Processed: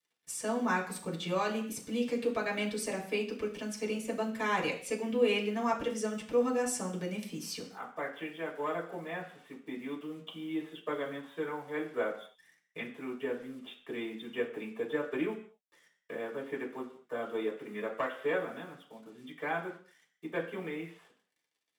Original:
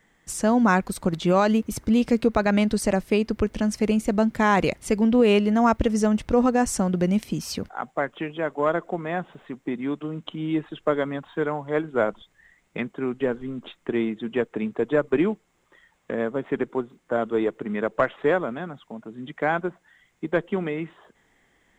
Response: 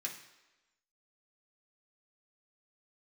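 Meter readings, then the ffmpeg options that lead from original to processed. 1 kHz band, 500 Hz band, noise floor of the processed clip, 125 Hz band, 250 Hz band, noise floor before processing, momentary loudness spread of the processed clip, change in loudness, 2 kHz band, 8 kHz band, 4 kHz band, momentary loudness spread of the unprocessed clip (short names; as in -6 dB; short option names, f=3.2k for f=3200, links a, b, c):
-11.0 dB, -10.0 dB, -81 dBFS, -15.5 dB, -14.0 dB, -67 dBFS, 13 LU, -11.0 dB, -8.0 dB, -6.5 dB, -5.5 dB, 13 LU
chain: -filter_complex "[0:a]lowshelf=f=280:g=-7,acrusher=bits=8:mix=0:aa=0.5[a];[1:a]atrim=start_sample=2205,afade=t=out:st=0.41:d=0.01,atrim=end_sample=18522,asetrate=61740,aresample=44100[b];[a][b]afir=irnorm=-1:irlink=0,volume=-3.5dB"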